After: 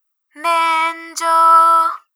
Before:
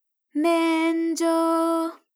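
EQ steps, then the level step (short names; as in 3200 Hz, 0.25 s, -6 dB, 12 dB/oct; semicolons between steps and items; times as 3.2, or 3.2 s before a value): resonant high-pass 1200 Hz, resonance Q 6.5; +7.0 dB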